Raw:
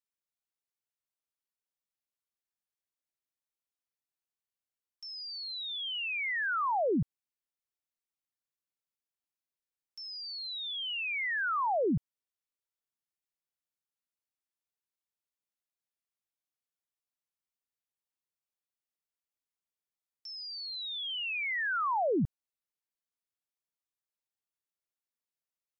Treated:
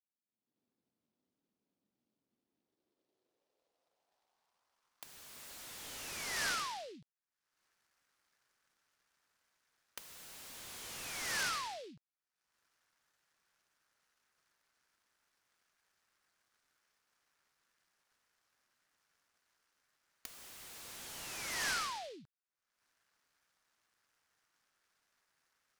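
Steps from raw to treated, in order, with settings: recorder AGC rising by 51 dB/s; band-pass sweep 240 Hz -> 1.6 kHz, 2.35–5.43 s; delay time shaken by noise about 3.4 kHz, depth 0.095 ms; trim -3 dB

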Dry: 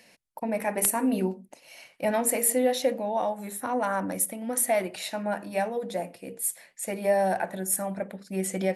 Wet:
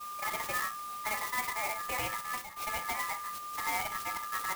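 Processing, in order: dynamic bell 1.4 kHz, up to +5 dB, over -38 dBFS, Q 0.7; ring modulator 1.5 kHz; whistle 1.2 kHz -35 dBFS; compression 2.5:1, threshold -30 dBFS, peak gain reduction 8 dB; saturation -25 dBFS, distortion -16 dB; resonant high shelf 7.7 kHz -6 dB, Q 1.5; expander -35 dBFS; time-frequency box 4.59–4.93 s, 210–7400 Hz -12 dB; time stretch by phase-locked vocoder 0.52×; reverberation, pre-delay 22 ms, DRR 8.5 dB; sampling jitter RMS 0.05 ms

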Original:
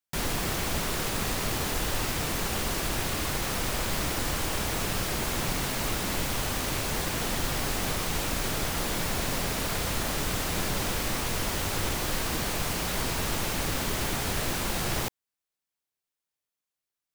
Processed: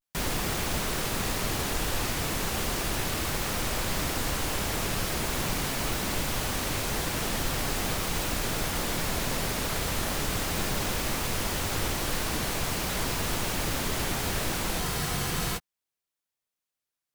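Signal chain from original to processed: vibrato 0.39 Hz 69 cents; spectral freeze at 14.81 s, 0.75 s

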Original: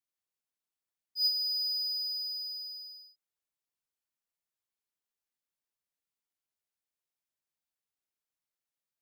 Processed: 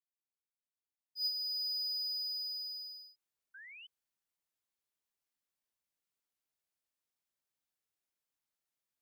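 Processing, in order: fade-in on the opening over 2.81 s; painted sound rise, 3.54–3.87 s, 1.5–3.1 kHz -52 dBFS

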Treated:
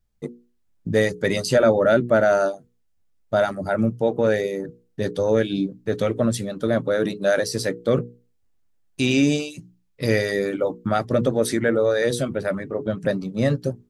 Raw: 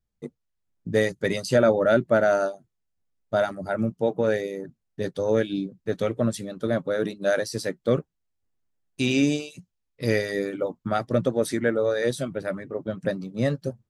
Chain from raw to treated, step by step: bass shelf 71 Hz +5.5 dB; hum notches 60/120/180/240/300/360/420/480 Hz; in parallel at -0.5 dB: peak limiter -20 dBFS, peak gain reduction 11.5 dB

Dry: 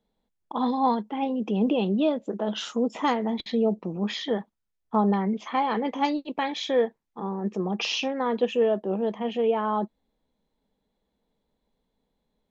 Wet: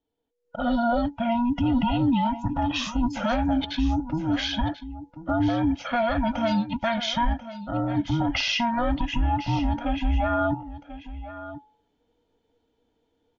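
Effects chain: every band turned upside down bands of 500 Hz; peak limiter -20 dBFS, peak gain reduction 8.5 dB; level rider gain up to 12 dB; wide varispeed 0.934×; on a send: delay 1039 ms -14 dB; on the sum: resampled via 16 kHz; de-hum 426.8 Hz, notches 2; trim -7.5 dB

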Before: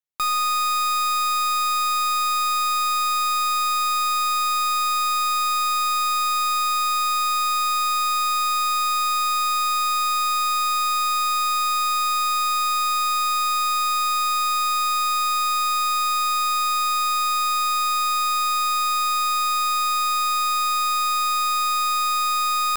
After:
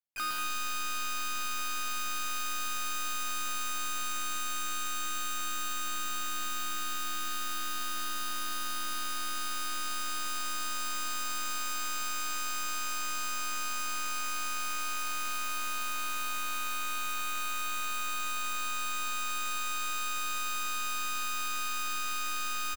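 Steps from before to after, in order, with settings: bouncing-ball echo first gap 110 ms, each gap 0.7×, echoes 5; harmony voices +3 st -11 dB, +4 st -8 dB, +12 st -9 dB; overload inside the chain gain 23 dB; trim -8 dB

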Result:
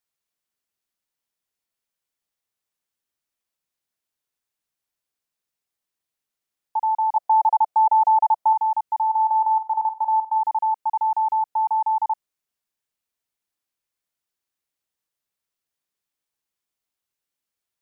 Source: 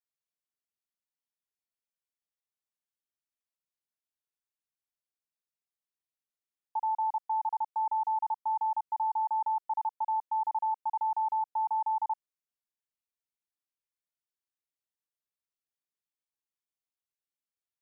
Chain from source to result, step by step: 7.16–8.53 s: peaking EQ 680 Hz +11.5 dB 0.62 oct; 9.05–10.38 s: flutter echo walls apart 8 m, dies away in 0.26 s; trim +8.5 dB

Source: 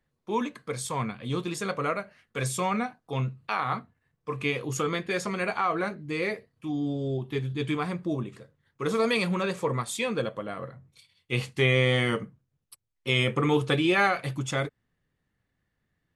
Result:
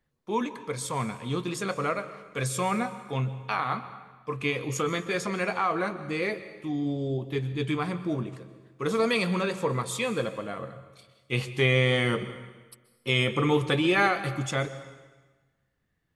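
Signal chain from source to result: plate-style reverb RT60 1.3 s, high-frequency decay 0.9×, pre-delay 115 ms, DRR 13 dB

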